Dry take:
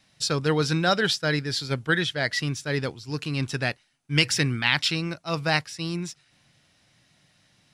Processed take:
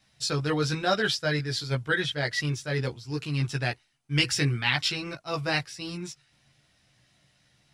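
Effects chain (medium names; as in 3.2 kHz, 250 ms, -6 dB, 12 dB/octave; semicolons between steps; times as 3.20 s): chorus voices 6, 0.82 Hz, delay 15 ms, depth 1.6 ms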